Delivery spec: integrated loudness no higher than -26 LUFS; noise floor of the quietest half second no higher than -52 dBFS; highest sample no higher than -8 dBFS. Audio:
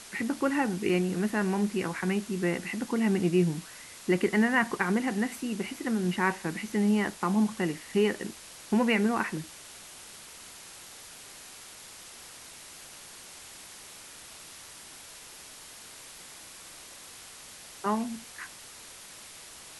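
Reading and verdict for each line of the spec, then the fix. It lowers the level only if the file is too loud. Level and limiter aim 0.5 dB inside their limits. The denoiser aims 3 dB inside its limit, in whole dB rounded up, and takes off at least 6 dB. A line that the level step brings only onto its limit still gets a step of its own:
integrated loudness -28.5 LUFS: pass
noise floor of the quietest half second -48 dBFS: fail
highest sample -13.0 dBFS: pass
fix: noise reduction 7 dB, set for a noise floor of -48 dBFS

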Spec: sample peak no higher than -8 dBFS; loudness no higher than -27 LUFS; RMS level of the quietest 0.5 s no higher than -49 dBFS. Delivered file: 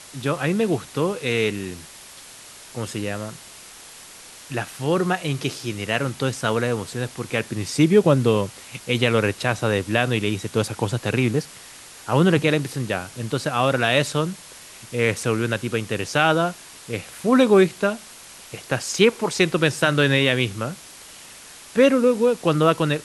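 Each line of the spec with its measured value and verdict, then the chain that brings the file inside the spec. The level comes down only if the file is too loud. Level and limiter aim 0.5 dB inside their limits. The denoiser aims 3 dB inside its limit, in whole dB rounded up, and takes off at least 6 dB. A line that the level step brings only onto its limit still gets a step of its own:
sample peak -2.5 dBFS: fail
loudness -21.5 LUFS: fail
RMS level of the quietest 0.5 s -43 dBFS: fail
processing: noise reduction 6 dB, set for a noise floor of -43 dBFS; trim -6 dB

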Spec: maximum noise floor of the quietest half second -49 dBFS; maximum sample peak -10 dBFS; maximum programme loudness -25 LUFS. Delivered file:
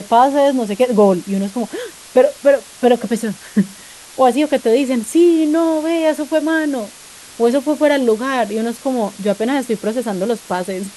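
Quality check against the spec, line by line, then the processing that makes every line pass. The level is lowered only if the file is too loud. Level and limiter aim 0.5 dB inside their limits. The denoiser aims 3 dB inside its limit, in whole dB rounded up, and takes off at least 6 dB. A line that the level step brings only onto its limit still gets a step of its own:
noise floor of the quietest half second -39 dBFS: fail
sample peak -1.5 dBFS: fail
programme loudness -16.5 LUFS: fail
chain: noise reduction 6 dB, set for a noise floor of -39 dBFS; trim -9 dB

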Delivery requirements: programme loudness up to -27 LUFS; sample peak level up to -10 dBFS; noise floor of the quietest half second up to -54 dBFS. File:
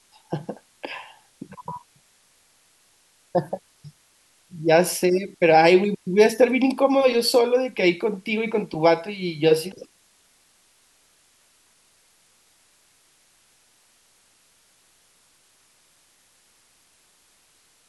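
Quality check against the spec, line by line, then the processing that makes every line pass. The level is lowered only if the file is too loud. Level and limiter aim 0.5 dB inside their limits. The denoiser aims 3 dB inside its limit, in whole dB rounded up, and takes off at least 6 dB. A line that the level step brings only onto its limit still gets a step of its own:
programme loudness -20.5 LUFS: fail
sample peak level -4.5 dBFS: fail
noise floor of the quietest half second -61 dBFS: pass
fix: trim -7 dB

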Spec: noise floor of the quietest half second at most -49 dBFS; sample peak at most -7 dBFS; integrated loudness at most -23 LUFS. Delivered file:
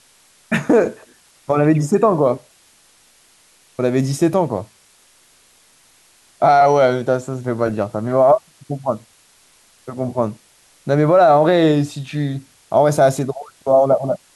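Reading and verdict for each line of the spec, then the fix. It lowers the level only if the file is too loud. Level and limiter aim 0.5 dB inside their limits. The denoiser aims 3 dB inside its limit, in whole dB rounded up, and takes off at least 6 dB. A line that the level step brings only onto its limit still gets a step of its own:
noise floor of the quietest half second -53 dBFS: pass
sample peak -4.0 dBFS: fail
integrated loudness -17.0 LUFS: fail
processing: trim -6.5 dB

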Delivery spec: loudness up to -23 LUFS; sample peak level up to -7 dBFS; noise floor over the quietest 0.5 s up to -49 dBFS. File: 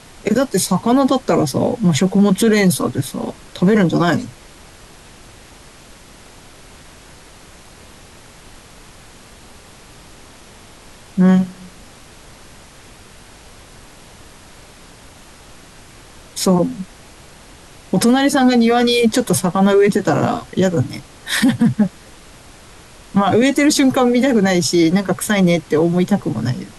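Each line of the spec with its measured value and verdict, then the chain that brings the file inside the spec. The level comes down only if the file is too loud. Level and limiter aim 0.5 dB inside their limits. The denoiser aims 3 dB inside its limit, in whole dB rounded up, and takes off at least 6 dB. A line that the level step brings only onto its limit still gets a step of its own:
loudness -15.5 LUFS: fail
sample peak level -5.5 dBFS: fail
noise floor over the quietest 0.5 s -42 dBFS: fail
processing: trim -8 dB

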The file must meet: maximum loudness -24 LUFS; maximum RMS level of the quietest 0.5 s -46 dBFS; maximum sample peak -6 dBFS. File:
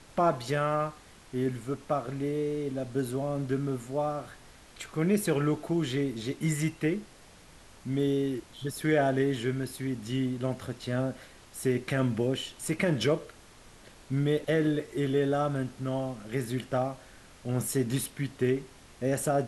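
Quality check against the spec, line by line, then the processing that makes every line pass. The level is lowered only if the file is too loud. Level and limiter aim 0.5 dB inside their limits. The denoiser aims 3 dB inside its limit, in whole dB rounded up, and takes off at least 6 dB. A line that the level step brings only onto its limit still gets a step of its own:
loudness -30.5 LUFS: pass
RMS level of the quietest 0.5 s -53 dBFS: pass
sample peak -13.5 dBFS: pass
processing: none needed

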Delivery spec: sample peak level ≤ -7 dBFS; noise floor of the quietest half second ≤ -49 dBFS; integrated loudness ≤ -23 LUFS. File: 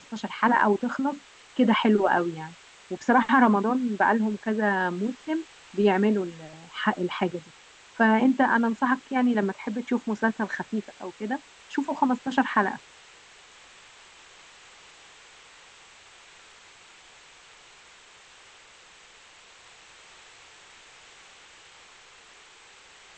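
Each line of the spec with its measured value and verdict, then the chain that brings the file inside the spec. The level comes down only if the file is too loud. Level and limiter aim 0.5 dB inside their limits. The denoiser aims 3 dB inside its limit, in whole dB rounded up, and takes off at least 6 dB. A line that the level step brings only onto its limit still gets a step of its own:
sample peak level -7.5 dBFS: pass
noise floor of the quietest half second -52 dBFS: pass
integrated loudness -25.0 LUFS: pass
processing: none needed

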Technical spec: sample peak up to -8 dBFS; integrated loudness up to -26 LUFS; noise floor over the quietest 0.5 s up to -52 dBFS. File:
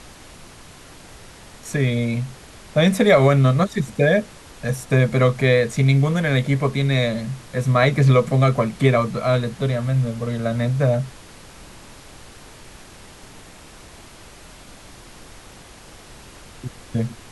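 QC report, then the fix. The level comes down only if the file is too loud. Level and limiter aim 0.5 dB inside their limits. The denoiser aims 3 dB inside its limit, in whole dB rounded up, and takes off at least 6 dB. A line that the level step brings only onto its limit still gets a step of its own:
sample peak -3.5 dBFS: fail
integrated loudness -19.5 LUFS: fail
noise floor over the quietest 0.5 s -43 dBFS: fail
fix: noise reduction 6 dB, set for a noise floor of -43 dBFS; trim -7 dB

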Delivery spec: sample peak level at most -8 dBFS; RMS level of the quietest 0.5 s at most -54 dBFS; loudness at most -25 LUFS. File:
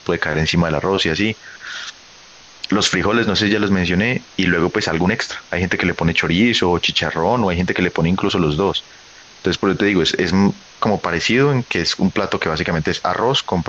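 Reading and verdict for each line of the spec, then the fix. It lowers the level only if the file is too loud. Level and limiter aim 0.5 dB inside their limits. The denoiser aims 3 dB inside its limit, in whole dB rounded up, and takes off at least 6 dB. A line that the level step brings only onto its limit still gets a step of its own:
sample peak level -4.5 dBFS: fail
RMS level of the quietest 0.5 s -43 dBFS: fail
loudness -17.5 LUFS: fail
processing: noise reduction 6 dB, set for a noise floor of -43 dBFS; trim -8 dB

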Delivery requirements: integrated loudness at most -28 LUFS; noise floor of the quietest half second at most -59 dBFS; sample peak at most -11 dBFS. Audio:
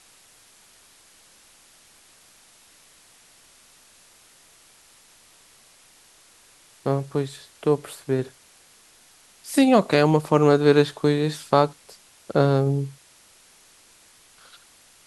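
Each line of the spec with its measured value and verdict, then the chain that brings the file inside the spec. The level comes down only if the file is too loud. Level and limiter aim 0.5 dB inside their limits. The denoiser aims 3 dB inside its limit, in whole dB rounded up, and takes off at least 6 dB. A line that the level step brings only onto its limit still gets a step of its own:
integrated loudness -21.5 LUFS: fail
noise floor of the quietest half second -54 dBFS: fail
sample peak -2.5 dBFS: fail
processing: trim -7 dB; peak limiter -11.5 dBFS

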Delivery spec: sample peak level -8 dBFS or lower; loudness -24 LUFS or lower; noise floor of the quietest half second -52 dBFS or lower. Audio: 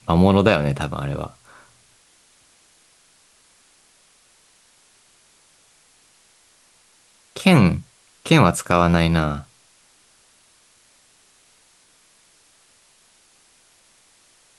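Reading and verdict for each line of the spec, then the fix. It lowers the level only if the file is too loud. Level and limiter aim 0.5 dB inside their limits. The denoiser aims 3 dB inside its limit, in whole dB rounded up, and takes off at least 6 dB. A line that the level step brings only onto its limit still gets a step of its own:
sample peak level -2.0 dBFS: fail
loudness -18.5 LUFS: fail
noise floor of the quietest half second -57 dBFS: pass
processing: trim -6 dB; peak limiter -8.5 dBFS

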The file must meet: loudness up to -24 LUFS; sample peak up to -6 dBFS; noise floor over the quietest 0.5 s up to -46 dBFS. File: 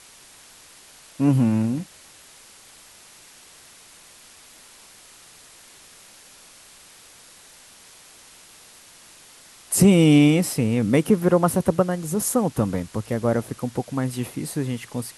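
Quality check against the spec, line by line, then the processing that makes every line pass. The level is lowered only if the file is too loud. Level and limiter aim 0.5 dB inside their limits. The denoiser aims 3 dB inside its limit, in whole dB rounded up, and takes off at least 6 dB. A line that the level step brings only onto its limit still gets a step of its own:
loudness -21.0 LUFS: fail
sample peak -5.0 dBFS: fail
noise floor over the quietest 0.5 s -49 dBFS: pass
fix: trim -3.5 dB

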